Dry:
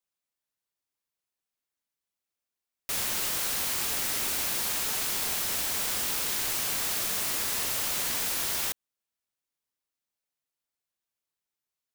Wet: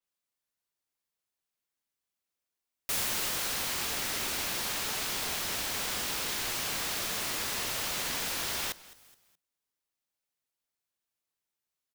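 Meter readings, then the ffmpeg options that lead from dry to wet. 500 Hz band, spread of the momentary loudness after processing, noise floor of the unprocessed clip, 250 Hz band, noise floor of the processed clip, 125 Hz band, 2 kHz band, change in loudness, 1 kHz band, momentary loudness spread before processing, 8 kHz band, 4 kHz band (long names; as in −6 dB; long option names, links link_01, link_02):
0.0 dB, 2 LU, below −85 dBFS, 0.0 dB, below −85 dBFS, 0.0 dB, 0.0 dB, −4.0 dB, 0.0 dB, 1 LU, −4.0 dB, −0.5 dB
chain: -filter_complex "[0:a]asplit=2[link_01][link_02];[link_02]asplit=3[link_03][link_04][link_05];[link_03]adelay=211,afreqshift=-61,volume=-20dB[link_06];[link_04]adelay=422,afreqshift=-122,volume=-29.4dB[link_07];[link_05]adelay=633,afreqshift=-183,volume=-38.7dB[link_08];[link_06][link_07][link_08]amix=inputs=3:normalize=0[link_09];[link_01][link_09]amix=inputs=2:normalize=0,adynamicequalizer=threshold=0.00398:dfrequency=6700:dqfactor=0.7:tfrequency=6700:tqfactor=0.7:attack=5:release=100:ratio=0.375:range=3.5:mode=cutabove:tftype=highshelf"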